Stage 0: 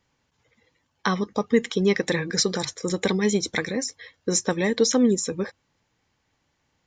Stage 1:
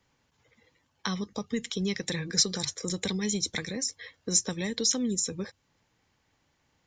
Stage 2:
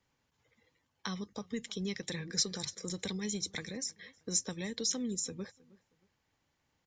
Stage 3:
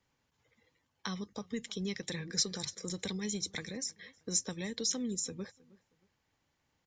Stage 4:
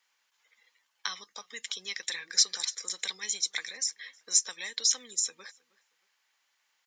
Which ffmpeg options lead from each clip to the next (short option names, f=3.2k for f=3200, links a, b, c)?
-filter_complex "[0:a]acrossover=split=160|3000[a][b][c];[b]acompressor=threshold=-38dB:ratio=3[d];[a][d][c]amix=inputs=3:normalize=0"
-filter_complex "[0:a]asplit=2[a][b];[b]adelay=315,lowpass=f=2.2k:p=1,volume=-22dB,asplit=2[c][d];[d]adelay=315,lowpass=f=2.2k:p=1,volume=0.32[e];[a][c][e]amix=inputs=3:normalize=0,volume=-7dB"
-af anull
-af "highpass=1.3k,volume=8dB"